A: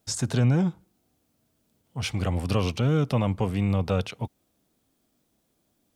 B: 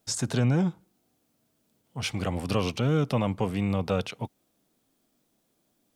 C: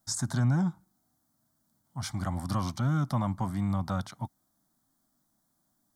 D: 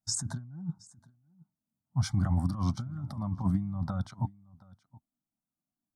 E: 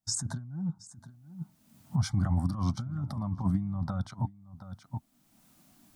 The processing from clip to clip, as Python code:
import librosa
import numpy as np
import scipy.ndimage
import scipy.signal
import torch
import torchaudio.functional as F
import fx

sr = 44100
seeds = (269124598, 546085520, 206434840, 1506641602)

y1 = fx.peak_eq(x, sr, hz=62.0, db=-12.0, octaves=1.2)
y2 = fx.fixed_phaser(y1, sr, hz=1100.0, stages=4)
y3 = fx.over_compress(y2, sr, threshold_db=-32.0, ratio=-0.5)
y3 = y3 + 10.0 ** (-15.5 / 20.0) * np.pad(y3, (int(722 * sr / 1000.0), 0))[:len(y3)]
y3 = fx.spectral_expand(y3, sr, expansion=1.5)
y4 = fx.recorder_agc(y3, sr, target_db=-26.5, rise_db_per_s=27.0, max_gain_db=30)